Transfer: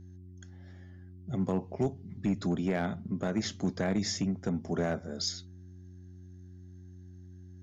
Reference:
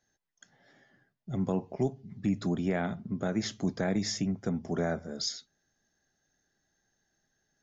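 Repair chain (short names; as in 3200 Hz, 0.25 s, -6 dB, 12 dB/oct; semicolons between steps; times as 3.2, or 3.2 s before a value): clip repair -22 dBFS; de-hum 90.9 Hz, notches 4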